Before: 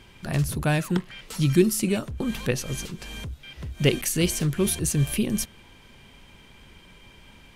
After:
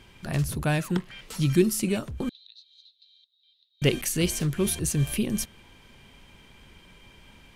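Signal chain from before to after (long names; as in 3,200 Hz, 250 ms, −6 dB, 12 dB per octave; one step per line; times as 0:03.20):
0:01.19–0:01.62: surface crackle 47 per second −45 dBFS
0:02.29–0:03.82: flat-topped band-pass 3,900 Hz, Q 7.7
level −2 dB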